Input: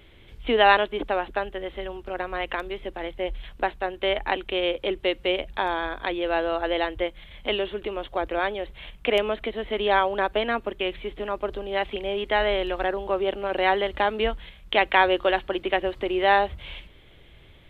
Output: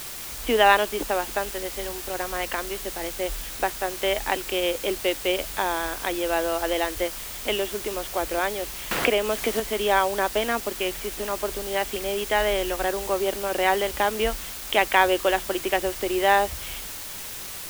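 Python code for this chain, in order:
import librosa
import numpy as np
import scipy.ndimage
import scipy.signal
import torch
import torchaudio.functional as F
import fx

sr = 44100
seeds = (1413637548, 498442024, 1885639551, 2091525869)

y = fx.quant_dither(x, sr, seeds[0], bits=6, dither='triangular')
y = fx.band_squash(y, sr, depth_pct=100, at=(8.91, 9.6))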